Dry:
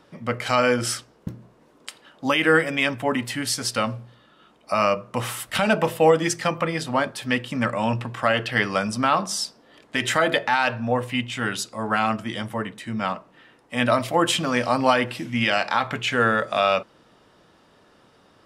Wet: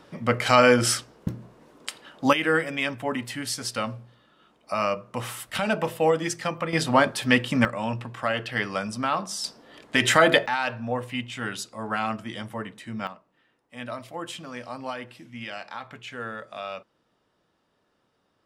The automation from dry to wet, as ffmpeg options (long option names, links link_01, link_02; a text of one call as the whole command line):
ffmpeg -i in.wav -af "asetnsamples=nb_out_samples=441:pad=0,asendcmd='2.33 volume volume -5dB;6.73 volume volume 3.5dB;7.65 volume volume -5.5dB;9.44 volume volume 3dB;10.46 volume volume -5.5dB;13.07 volume volume -15dB',volume=3dB" out.wav